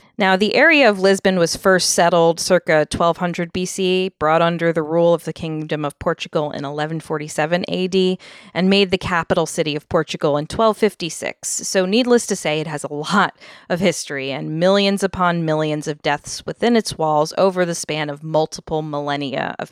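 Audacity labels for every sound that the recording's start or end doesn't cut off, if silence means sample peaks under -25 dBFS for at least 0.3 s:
8.550000	13.290000	sound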